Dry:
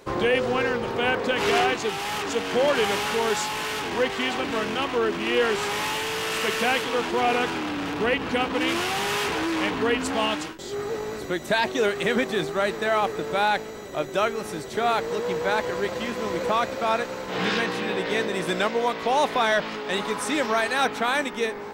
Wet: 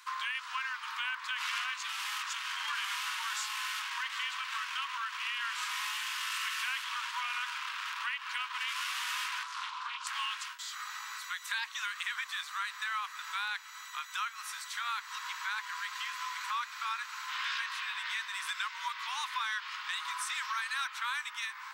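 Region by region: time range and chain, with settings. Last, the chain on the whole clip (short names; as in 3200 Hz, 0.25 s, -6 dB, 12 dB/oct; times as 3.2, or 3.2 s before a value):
9.43–10.07 air absorption 98 m + fixed phaser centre 360 Hz, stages 8 + Doppler distortion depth 0.3 ms
whole clip: Chebyshev high-pass 1000 Hz, order 6; compressor 2.5:1, threshold -36 dBFS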